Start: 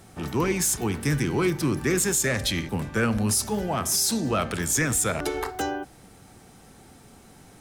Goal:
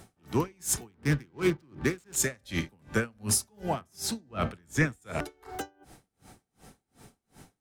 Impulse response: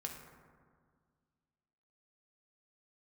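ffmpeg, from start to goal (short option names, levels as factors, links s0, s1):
-filter_complex "[0:a]asettb=1/sr,asplit=3[s0][s1][s2];[s0]atrim=end=0.914[s3];[s1]atrim=start=0.91:end=2.16,asetpts=PTS-STARTPTS,afade=t=in:d=0.004:c=qsin,afade=t=out:st=1.246:d=0.004:c=qsin,adynamicsmooth=sensitivity=7:basefreq=510[s4];[s2]atrim=start=2.156[s5];[s3][s4]acrossfade=d=0.004:c1=hsin:c2=qsin[s6];[s6][s5]acrossfade=d=0.004:c1=qsin:c2=hsin,asettb=1/sr,asplit=3[s7][s8][s9];[s7]atrim=end=3.814[s10];[s8]atrim=start=3.81:end=5.02,asetpts=PTS-STARTPTS,afade=t=in:d=0.004:c=qsin,afade=t=out:st=1.206:d=0.004:c=qsin,bass=f=250:g=4,treble=f=4000:g=-8[s11];[s9]atrim=start=5.016[s12];[s10][s11]acrossfade=d=0.004:c1=hsin:c2=qsin[s13];[s13][s12]acrossfade=d=0.004:c1=qsin:c2=hsin,aeval=exprs='val(0)*pow(10,-36*(0.5-0.5*cos(2*PI*2.7*n/s))/20)':c=same"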